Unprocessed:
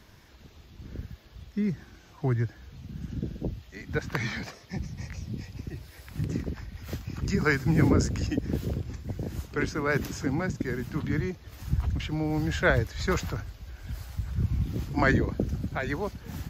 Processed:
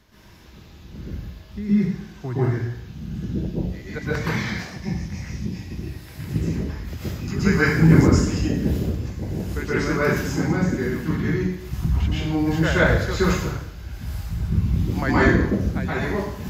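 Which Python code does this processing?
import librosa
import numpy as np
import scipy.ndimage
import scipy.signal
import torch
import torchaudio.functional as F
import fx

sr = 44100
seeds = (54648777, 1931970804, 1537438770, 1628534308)

y = fx.rev_plate(x, sr, seeds[0], rt60_s=0.73, hf_ratio=0.95, predelay_ms=110, drr_db=-9.5)
y = y * librosa.db_to_amplitude(-3.5)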